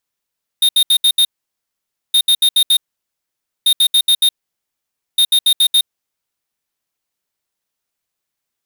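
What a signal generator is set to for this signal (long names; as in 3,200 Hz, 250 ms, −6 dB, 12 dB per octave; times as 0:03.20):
beeps in groups square 3,690 Hz, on 0.07 s, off 0.07 s, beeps 5, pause 0.89 s, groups 4, −11 dBFS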